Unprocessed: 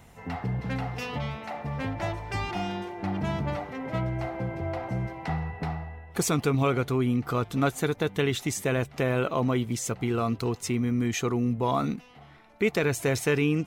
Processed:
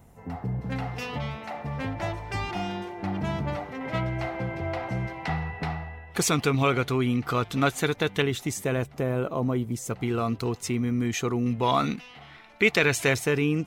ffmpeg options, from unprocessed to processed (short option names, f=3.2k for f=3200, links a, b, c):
-af "asetnsamples=n=441:p=0,asendcmd='0.72 equalizer g 0.5;3.81 equalizer g 6.5;8.22 equalizer g -2.5;8.94 equalizer g -9.5;9.9 equalizer g 0.5;11.46 equalizer g 10;13.14 equalizer g -0.5',equalizer=f=3k:t=o:w=2.6:g=-11"